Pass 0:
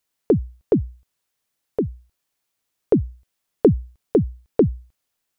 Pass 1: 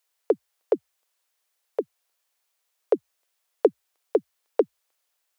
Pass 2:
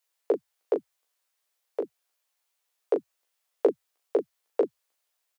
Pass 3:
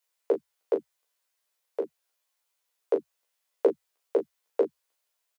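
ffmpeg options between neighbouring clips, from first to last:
-af "highpass=f=460:w=0.5412,highpass=f=460:w=1.3066,volume=1.5dB"
-af "aecho=1:1:15|38:0.596|0.422,volume=-4.5dB"
-filter_complex "[0:a]asplit=2[a][b];[b]adelay=13,volume=-6.5dB[c];[a][c]amix=inputs=2:normalize=0,volume=-1.5dB"

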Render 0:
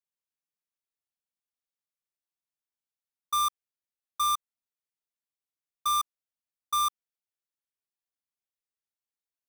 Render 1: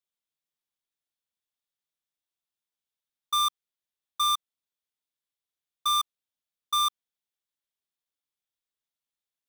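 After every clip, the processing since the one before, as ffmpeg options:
-af "equalizer=f=3.5k:t=o:w=0.42:g=7"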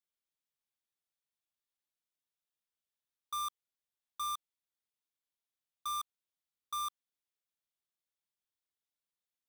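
-af "asoftclip=type=hard:threshold=-31dB,volume=-4.5dB"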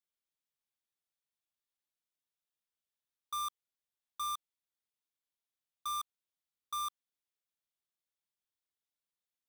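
-af anull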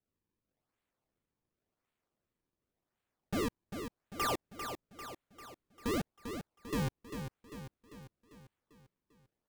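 -af "acrusher=samples=37:mix=1:aa=0.000001:lfo=1:lforange=59.2:lforate=0.91,aecho=1:1:396|792|1188|1584|1980|2376:0.398|0.215|0.116|0.0627|0.0339|0.0183,volume=3.5dB"

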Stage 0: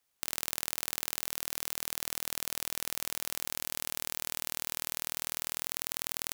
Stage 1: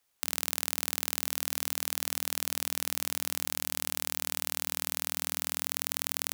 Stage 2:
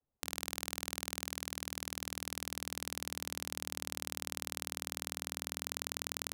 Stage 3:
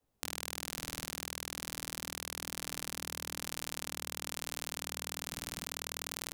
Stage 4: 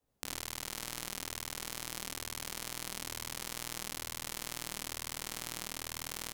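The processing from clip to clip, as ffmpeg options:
-af "bandreject=f=89.15:t=h:w=4,bandreject=f=178.3:t=h:w=4,bandreject=f=267.45:t=h:w=4,volume=3dB"
-af "afftfilt=real='re*gte(hypot(re,im),0.000112)':imag='im*gte(hypot(re,im),0.000112)':win_size=1024:overlap=0.75,adynamicsmooth=sensitivity=7.5:basefreq=560,lowshelf=f=370:g=6,volume=1dB"
-af "acompressor=threshold=-42dB:ratio=6,flanger=delay=18:depth=5.1:speed=1.1,volume=12.5dB"
-af "aecho=1:1:34.99|75.8:0.316|0.708,volume=-2dB"

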